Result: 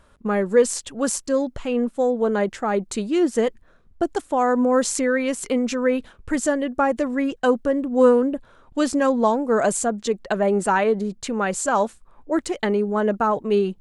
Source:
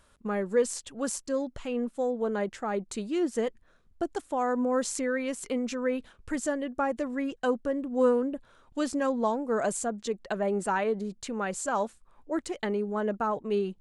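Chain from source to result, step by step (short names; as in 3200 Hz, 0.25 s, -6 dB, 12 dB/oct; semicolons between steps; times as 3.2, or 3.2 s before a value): mismatched tape noise reduction decoder only; gain +8.5 dB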